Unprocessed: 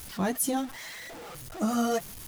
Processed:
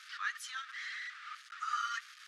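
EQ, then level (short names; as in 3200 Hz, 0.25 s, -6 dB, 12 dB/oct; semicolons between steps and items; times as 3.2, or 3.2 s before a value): rippled Chebyshev high-pass 1200 Hz, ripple 3 dB; tape spacing loss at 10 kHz 30 dB; +9.0 dB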